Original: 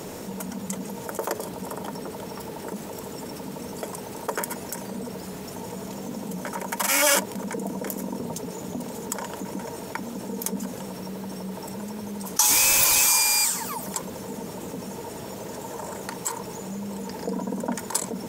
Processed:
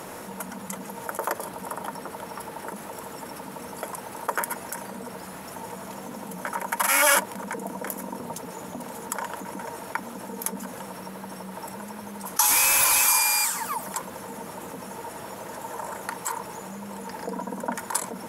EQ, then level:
parametric band 1,300 Hz +12 dB 2.3 octaves
parametric band 11,000 Hz +12.5 dB 0.37 octaves
notch filter 420 Hz, Q 12
−7.0 dB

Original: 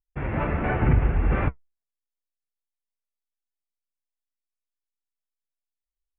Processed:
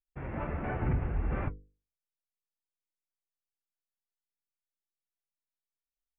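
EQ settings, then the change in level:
high-shelf EQ 2,400 Hz −8 dB
mains-hum notches 50/100/150/200/250/300/350/400/450/500 Hz
−8.5 dB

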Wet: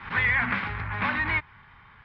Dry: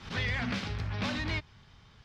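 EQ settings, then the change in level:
low-pass filter 3,400 Hz 24 dB per octave
flat-topped bell 1,400 Hz +12.5 dB
notch filter 1,300 Hz, Q 29
0.0 dB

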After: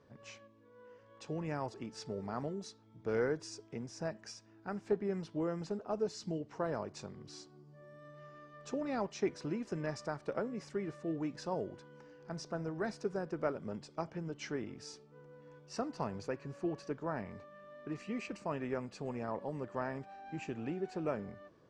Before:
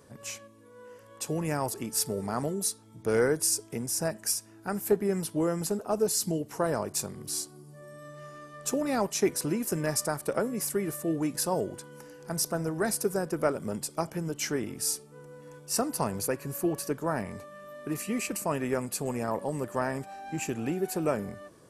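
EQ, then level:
Bessel low-pass filter 3,700 Hz, order 6
−8.0 dB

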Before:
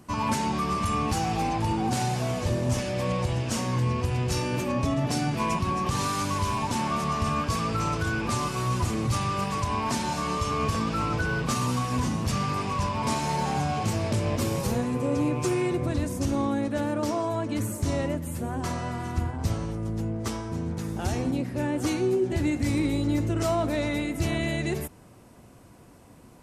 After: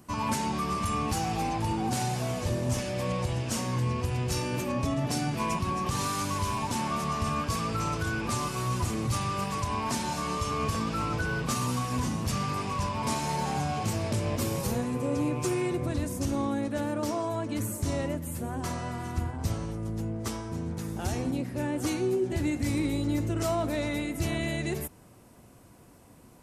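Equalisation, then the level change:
high-shelf EQ 10,000 Hz +8 dB
−3.0 dB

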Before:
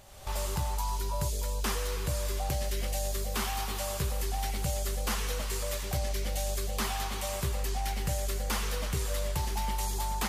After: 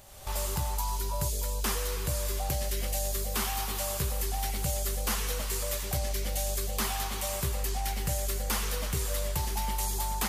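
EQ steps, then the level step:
high-shelf EQ 9,300 Hz +8.5 dB
0.0 dB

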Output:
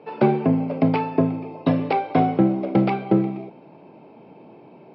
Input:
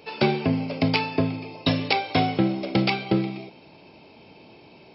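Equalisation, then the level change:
high-pass filter 130 Hz 24 dB per octave
low-pass filter 1,200 Hz 12 dB per octave
+4.5 dB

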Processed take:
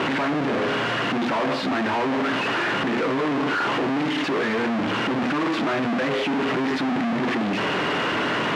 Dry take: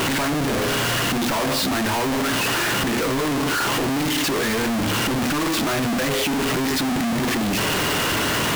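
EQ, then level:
band-pass filter 180–2,600 Hz
0.0 dB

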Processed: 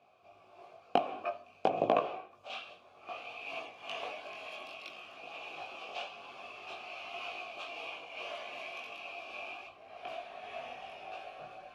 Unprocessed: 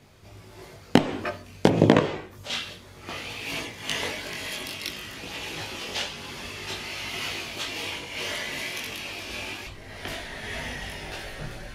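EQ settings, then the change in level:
formant filter a
+3.0 dB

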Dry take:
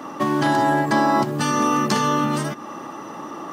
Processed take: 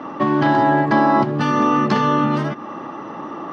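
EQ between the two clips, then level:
high-frequency loss of the air 260 metres
+4.0 dB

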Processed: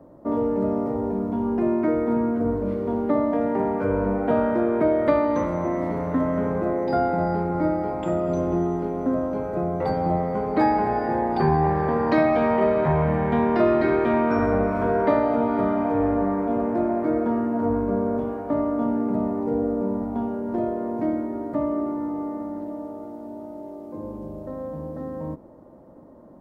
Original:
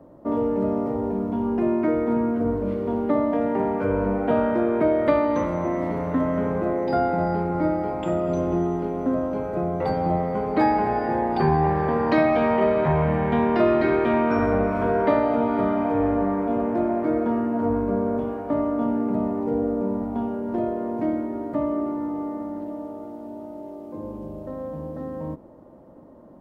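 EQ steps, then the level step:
parametric band 2,900 Hz −4.5 dB 0.67 octaves
0.0 dB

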